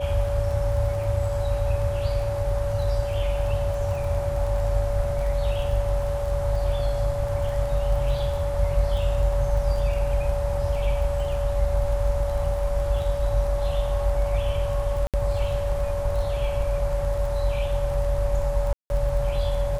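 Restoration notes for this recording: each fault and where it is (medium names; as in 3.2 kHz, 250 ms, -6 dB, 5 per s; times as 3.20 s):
crackle 19 per s -31 dBFS
whine 570 Hz -27 dBFS
15.07–15.14 s: dropout 67 ms
18.73–18.90 s: dropout 171 ms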